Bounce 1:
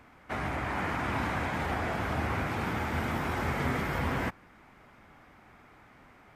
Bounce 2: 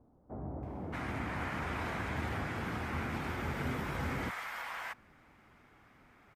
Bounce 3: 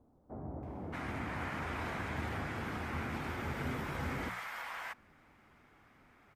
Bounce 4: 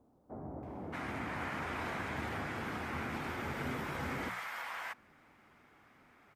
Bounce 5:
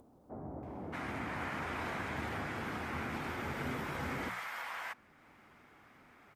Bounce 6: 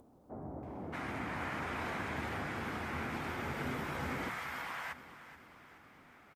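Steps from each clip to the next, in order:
multiband delay without the direct sound lows, highs 630 ms, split 730 Hz; level −5 dB
mains-hum notches 60/120/180 Hz; level −1.5 dB
low-shelf EQ 86 Hz −11 dB; level +1 dB
upward compression, threshold −55 dBFS
repeating echo 429 ms, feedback 52%, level −14.5 dB

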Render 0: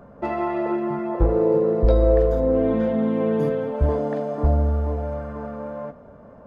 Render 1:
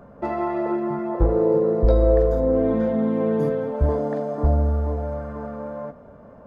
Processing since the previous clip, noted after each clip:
dynamic equaliser 2,800 Hz, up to −7 dB, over −53 dBFS, Q 1.9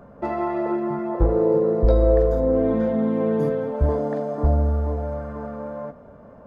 no processing that can be heard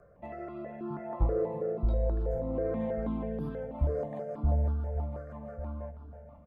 rotating-speaker cabinet horn 0.6 Hz, later 6 Hz, at 0:03.08
single-tap delay 1,143 ms −13 dB
step-sequenced phaser 6.2 Hz 900–2,000 Hz
level −6.5 dB

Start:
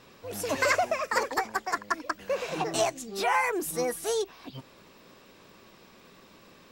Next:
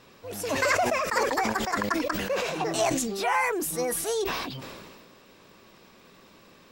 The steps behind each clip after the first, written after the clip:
level that may fall only so fast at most 31 dB per second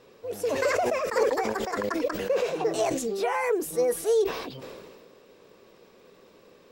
parametric band 460 Hz +12.5 dB 0.77 octaves
level −5.5 dB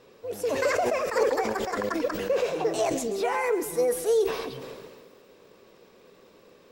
feedback echo at a low word length 135 ms, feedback 55%, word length 9 bits, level −14 dB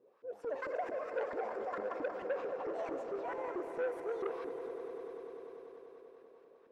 auto-filter band-pass saw up 4.5 Hz 310–1,600 Hz
echo that builds up and dies away 98 ms, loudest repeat 5, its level −14 dB
saturating transformer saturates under 900 Hz
level −7 dB

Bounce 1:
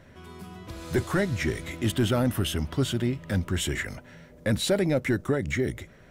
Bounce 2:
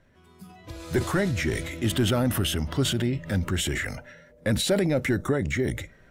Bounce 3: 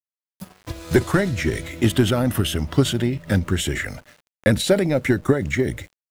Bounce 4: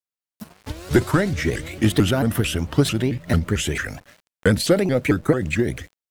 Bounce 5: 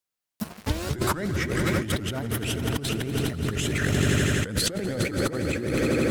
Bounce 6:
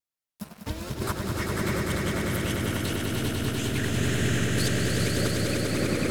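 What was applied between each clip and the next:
noise reduction from a noise print of the clip's start 11 dB; transient designer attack +1 dB, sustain +7 dB
centre clipping without the shift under −44 dBFS; transient designer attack +7 dB, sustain −5 dB; level +3 dB
pitch modulation by a square or saw wave saw up 4.5 Hz, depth 250 cents
echo that builds up and dies away 83 ms, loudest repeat 5, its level −14 dB; compressor whose output falls as the input rises −27 dBFS, ratio −1
tape wow and flutter 71 cents; echo that builds up and dies away 99 ms, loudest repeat 5, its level −5 dB; level −6.5 dB

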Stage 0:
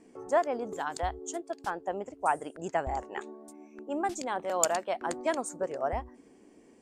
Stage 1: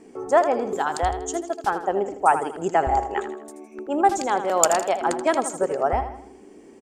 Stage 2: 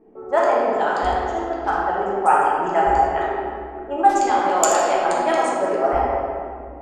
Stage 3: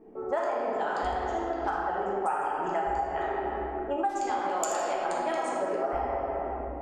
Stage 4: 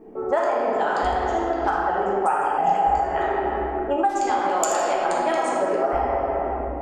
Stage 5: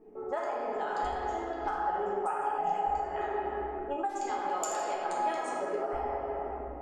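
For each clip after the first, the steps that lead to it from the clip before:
hollow resonant body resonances 400/800/1,300 Hz, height 7 dB; on a send: repeating echo 80 ms, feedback 44%, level −10.5 dB; on the sum: level +7.5 dB
low-pass that shuts in the quiet parts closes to 750 Hz, open at −16.5 dBFS; parametric band 120 Hz −8.5 dB 2.6 octaves; convolution reverb RT60 2.3 s, pre-delay 5 ms, DRR −6 dB; level −2.5 dB
downward compressor 6 to 1, threshold −27 dBFS, peak gain reduction 17 dB
healed spectral selection 0:02.61–0:02.97, 290–2,100 Hz after; level +7.5 dB
tuned comb filter 420 Hz, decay 0.24 s, harmonics all, mix 80%

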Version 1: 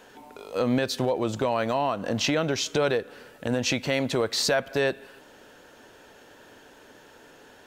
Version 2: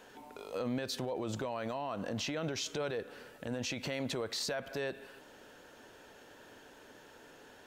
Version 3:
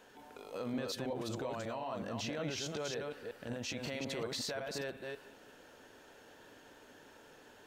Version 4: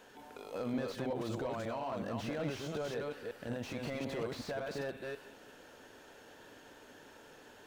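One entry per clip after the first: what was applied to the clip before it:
brickwall limiter −23.5 dBFS, peak gain reduction 10.5 dB; level −4.5 dB
delay that plays each chunk backwards 184 ms, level −2.5 dB; level −4 dB
slew-rate limiting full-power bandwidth 13 Hz; level +2 dB

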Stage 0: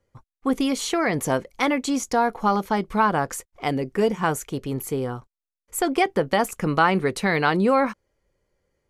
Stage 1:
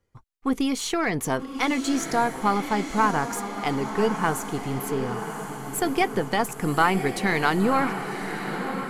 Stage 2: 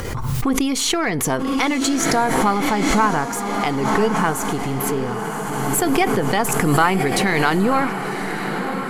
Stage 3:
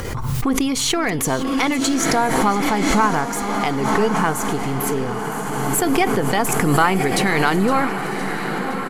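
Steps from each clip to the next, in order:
gain on one half-wave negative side −3 dB; parametric band 560 Hz −8 dB 0.28 octaves; feedback delay with all-pass diffusion 1,069 ms, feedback 53%, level −8 dB
upward compression, threshold −23 dBFS; on a send at −23.5 dB: convolution reverb RT60 0.55 s, pre-delay 17 ms; on the sum: background raised ahead of every attack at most 23 dB per second; level +3.5 dB
repeating echo 513 ms, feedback 58%, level −16 dB

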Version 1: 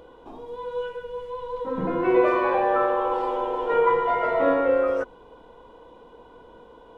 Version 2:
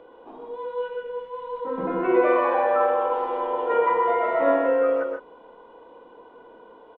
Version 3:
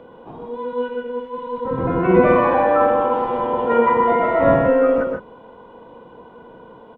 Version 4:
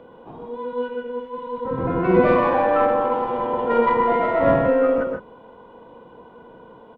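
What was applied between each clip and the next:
three-way crossover with the lows and the highs turned down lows −17 dB, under 210 Hz, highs −22 dB, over 3,300 Hz; loudspeakers that aren't time-aligned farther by 43 metres −6 dB, 54 metres −10 dB; level that may rise only so fast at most 200 dB per second
sub-octave generator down 1 octave, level +1 dB; level +5 dB
stylus tracing distortion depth 0.036 ms; level −2.5 dB

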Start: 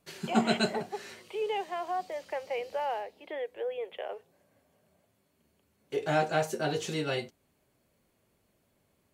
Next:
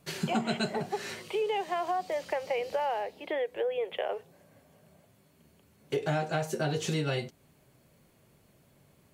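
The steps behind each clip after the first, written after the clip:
parametric band 140 Hz +8 dB 0.56 octaves
downward compressor 5 to 1, threshold −35 dBFS, peak gain reduction 15 dB
level +7.5 dB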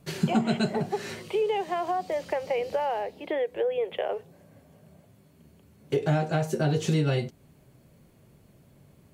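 low-shelf EQ 440 Hz +8.5 dB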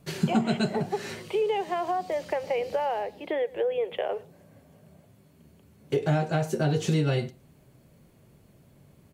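single-tap delay 112 ms −23 dB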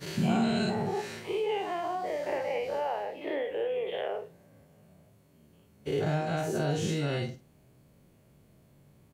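every bin's largest magnitude spread in time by 120 ms
double-tracking delay 48 ms −10.5 dB
level −8.5 dB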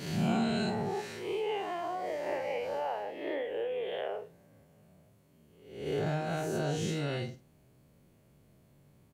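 peak hold with a rise ahead of every peak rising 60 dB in 0.67 s
level −4 dB

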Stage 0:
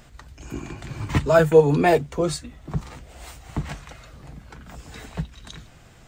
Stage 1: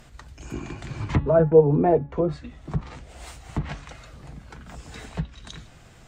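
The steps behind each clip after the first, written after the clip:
treble cut that deepens with the level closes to 730 Hz, closed at −17.5 dBFS
hum removal 281.7 Hz, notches 15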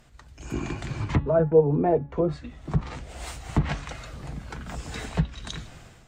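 automatic gain control gain up to 12.5 dB
level −7 dB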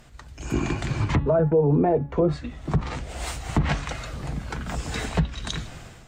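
brickwall limiter −17.5 dBFS, peak gain reduction 9.5 dB
level +5.5 dB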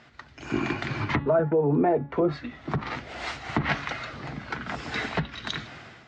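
loudspeaker in its box 150–5,100 Hz, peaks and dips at 170 Hz −6 dB, 500 Hz −4 dB, 1,400 Hz +4 dB, 2,000 Hz +5 dB

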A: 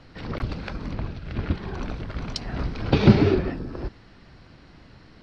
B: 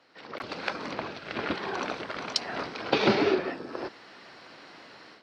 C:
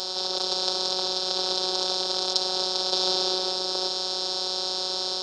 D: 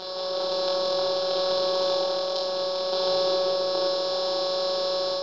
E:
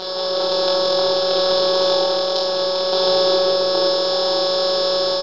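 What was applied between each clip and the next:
high-pass filter 460 Hz 12 dB per octave; automatic gain control gain up to 14 dB; level −7 dB
compressor on every frequency bin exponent 0.2; drawn EQ curve 100 Hz 0 dB, 270 Hz −19 dB, 380 Hz 0 dB, 830 Hz +5 dB, 1,300 Hz 0 dB, 2,200 Hz −14 dB, 3,700 Hz +15 dB, 7,000 Hz +13 dB, 11,000 Hz +9 dB; phases set to zero 185 Hz; level −10.5 dB
automatic gain control gain up to 4 dB; high-frequency loss of the air 270 metres; flutter between parallel walls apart 4 metres, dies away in 0.68 s
double-tracking delay 21 ms −8.5 dB; level +8 dB

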